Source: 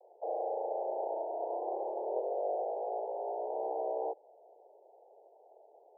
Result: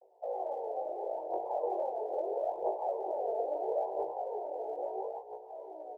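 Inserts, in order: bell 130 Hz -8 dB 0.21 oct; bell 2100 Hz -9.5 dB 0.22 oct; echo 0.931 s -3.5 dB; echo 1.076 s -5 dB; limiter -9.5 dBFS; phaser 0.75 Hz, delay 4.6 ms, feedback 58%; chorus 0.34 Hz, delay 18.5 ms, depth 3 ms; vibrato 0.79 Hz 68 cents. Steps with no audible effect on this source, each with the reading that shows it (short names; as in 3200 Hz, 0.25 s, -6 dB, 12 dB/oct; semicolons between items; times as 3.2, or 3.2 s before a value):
bell 130 Hz: input band starts at 300 Hz; bell 2100 Hz: input band ends at 1000 Hz; limiter -9.5 dBFS: input peak -19.0 dBFS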